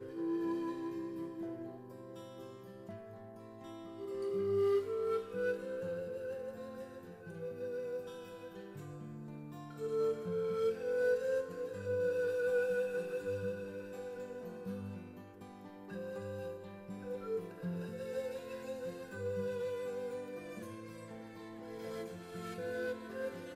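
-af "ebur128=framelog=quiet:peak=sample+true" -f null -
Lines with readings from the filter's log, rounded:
Integrated loudness:
  I:         -39.4 LUFS
  Threshold: -49.8 LUFS
Loudness range:
  LRA:        10.0 LU
  Threshold: -59.7 LUFS
  LRA low:   -45.3 LUFS
  LRA high:  -35.3 LUFS
Sample peak:
  Peak:      -23.6 dBFS
True peak:
  Peak:      -23.6 dBFS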